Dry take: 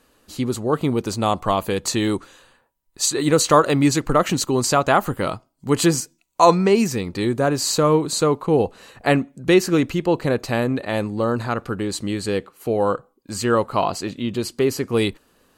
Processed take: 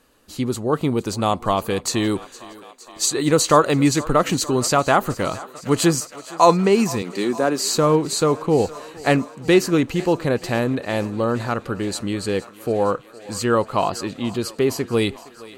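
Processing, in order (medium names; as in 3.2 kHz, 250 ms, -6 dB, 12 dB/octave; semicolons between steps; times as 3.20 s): 7.02–7.68 s: high-pass 190 Hz 24 dB/octave; thinning echo 464 ms, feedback 80%, high-pass 350 Hz, level -18.5 dB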